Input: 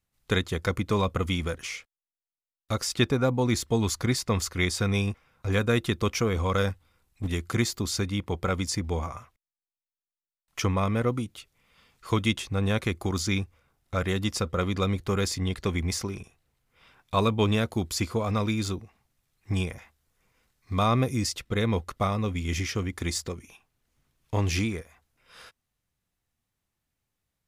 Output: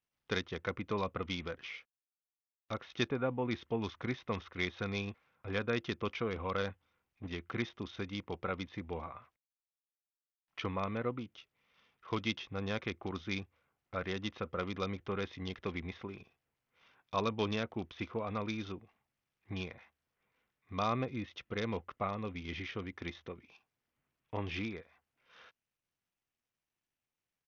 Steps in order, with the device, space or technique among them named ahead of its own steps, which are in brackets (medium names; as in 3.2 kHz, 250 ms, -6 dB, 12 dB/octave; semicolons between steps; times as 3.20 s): Bluetooth headset (high-pass 220 Hz 6 dB/octave; resampled via 8 kHz; trim -8 dB; SBC 64 kbps 48 kHz)